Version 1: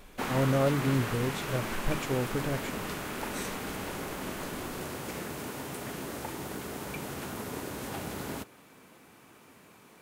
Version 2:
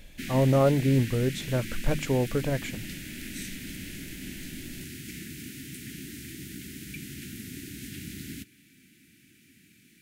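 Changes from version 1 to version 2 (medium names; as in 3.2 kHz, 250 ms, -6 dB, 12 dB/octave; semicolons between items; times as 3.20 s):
speech +5.0 dB; background: add inverse Chebyshev band-stop 530–1100 Hz, stop band 50 dB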